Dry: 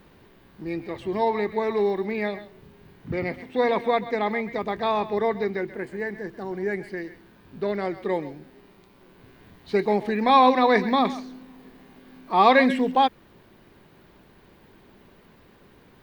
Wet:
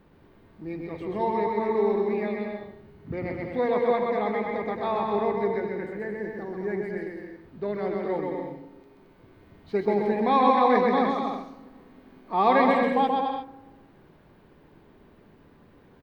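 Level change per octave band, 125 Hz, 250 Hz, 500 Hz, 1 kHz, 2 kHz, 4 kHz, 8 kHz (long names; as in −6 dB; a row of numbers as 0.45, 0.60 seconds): −1.0 dB, −1.5 dB, −0.5 dB, −2.0 dB, −5.0 dB, −8.0 dB, can't be measured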